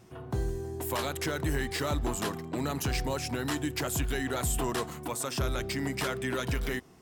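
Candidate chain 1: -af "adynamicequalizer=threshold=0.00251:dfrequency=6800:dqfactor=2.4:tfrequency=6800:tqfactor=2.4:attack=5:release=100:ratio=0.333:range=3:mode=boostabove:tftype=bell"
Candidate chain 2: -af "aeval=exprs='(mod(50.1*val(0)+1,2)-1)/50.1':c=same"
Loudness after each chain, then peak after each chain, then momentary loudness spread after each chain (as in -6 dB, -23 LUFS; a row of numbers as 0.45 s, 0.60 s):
-31.5 LUFS, -37.0 LUFS; -18.0 dBFS, -34.0 dBFS; 5 LU, 2 LU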